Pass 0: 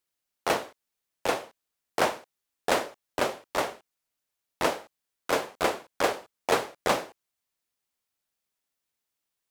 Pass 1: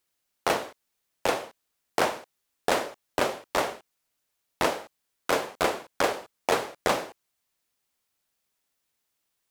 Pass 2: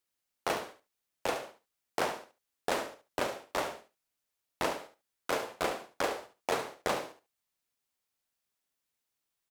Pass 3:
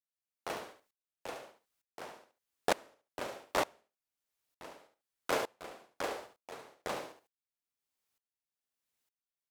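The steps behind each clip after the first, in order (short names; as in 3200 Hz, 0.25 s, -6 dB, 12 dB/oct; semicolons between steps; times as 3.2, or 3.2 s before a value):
compressor 2.5:1, threshold -28 dBFS, peak gain reduction 7 dB; gain +5.5 dB
feedback echo 71 ms, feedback 16%, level -10 dB; gain -7 dB
dB-ramp tremolo swelling 1.1 Hz, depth 24 dB; gain +3 dB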